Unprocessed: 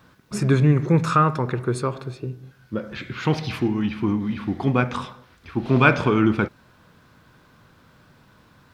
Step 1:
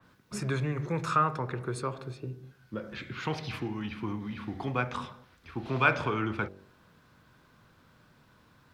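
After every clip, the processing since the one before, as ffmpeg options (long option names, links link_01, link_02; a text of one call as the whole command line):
ffmpeg -i in.wav -filter_complex "[0:a]bandreject=frequency=48.03:width_type=h:width=4,bandreject=frequency=96.06:width_type=h:width=4,bandreject=frequency=144.09:width_type=h:width=4,bandreject=frequency=192.12:width_type=h:width=4,bandreject=frequency=240.15:width_type=h:width=4,bandreject=frequency=288.18:width_type=h:width=4,bandreject=frequency=336.21:width_type=h:width=4,bandreject=frequency=384.24:width_type=h:width=4,bandreject=frequency=432.27:width_type=h:width=4,bandreject=frequency=480.3:width_type=h:width=4,bandreject=frequency=528.33:width_type=h:width=4,bandreject=frequency=576.36:width_type=h:width=4,bandreject=frequency=624.39:width_type=h:width=4,bandreject=frequency=672.42:width_type=h:width=4,bandreject=frequency=720.45:width_type=h:width=4,bandreject=frequency=768.48:width_type=h:width=4,bandreject=frequency=816.51:width_type=h:width=4,bandreject=frequency=864.54:width_type=h:width=4,acrossover=split=110|450|4900[link_01][link_02][link_03][link_04];[link_02]acompressor=threshold=-30dB:ratio=6[link_05];[link_01][link_05][link_03][link_04]amix=inputs=4:normalize=0,adynamicequalizer=threshold=0.0126:dfrequency=3200:dqfactor=0.7:tfrequency=3200:tqfactor=0.7:attack=5:release=100:ratio=0.375:range=2:mode=cutabove:tftype=highshelf,volume=-6.5dB" out.wav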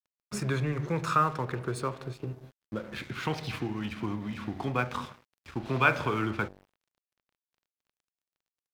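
ffmpeg -i in.wav -filter_complex "[0:a]asplit=2[link_01][link_02];[link_02]acompressor=threshold=-39dB:ratio=6,volume=-1.5dB[link_03];[link_01][link_03]amix=inputs=2:normalize=0,aeval=exprs='sgn(val(0))*max(abs(val(0))-0.00473,0)':channel_layout=same" out.wav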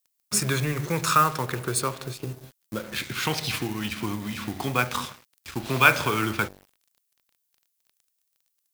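ffmpeg -i in.wav -filter_complex "[0:a]asplit=2[link_01][link_02];[link_02]acrusher=bits=5:mode=log:mix=0:aa=0.000001,volume=-5.5dB[link_03];[link_01][link_03]amix=inputs=2:normalize=0,crystalizer=i=4.5:c=0,volume=-1dB" out.wav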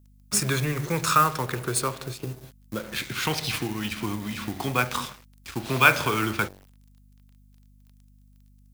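ffmpeg -i in.wav -filter_complex "[0:a]acrossover=split=580|6600[link_01][link_02][link_03];[link_03]acrusher=bits=2:mode=log:mix=0:aa=0.000001[link_04];[link_01][link_02][link_04]amix=inputs=3:normalize=0,aeval=exprs='val(0)+0.002*(sin(2*PI*50*n/s)+sin(2*PI*2*50*n/s)/2+sin(2*PI*3*50*n/s)/3+sin(2*PI*4*50*n/s)/4+sin(2*PI*5*50*n/s)/5)':channel_layout=same" out.wav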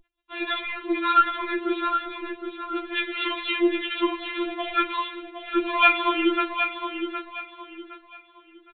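ffmpeg -i in.wav -af "aresample=8000,asoftclip=type=tanh:threshold=-11.5dB,aresample=44100,aecho=1:1:764|1528|2292|3056:0.398|0.119|0.0358|0.0107,afftfilt=real='re*4*eq(mod(b,16),0)':imag='im*4*eq(mod(b,16),0)':win_size=2048:overlap=0.75,volume=6.5dB" out.wav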